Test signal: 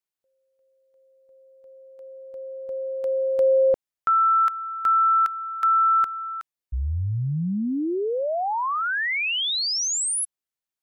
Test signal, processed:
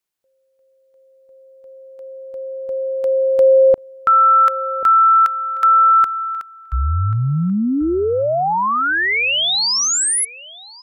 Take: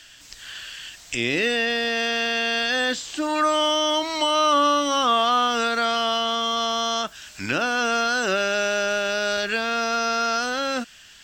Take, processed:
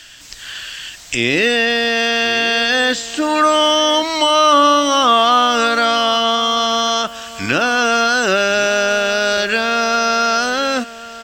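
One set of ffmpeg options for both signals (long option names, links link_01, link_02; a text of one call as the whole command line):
ffmpeg -i in.wav -filter_complex "[0:a]asplit=2[link_01][link_02];[link_02]adelay=1087,lowpass=frequency=2600:poles=1,volume=-16.5dB,asplit=2[link_03][link_04];[link_04]adelay=1087,lowpass=frequency=2600:poles=1,volume=0.15[link_05];[link_01][link_03][link_05]amix=inputs=3:normalize=0,volume=7.5dB" out.wav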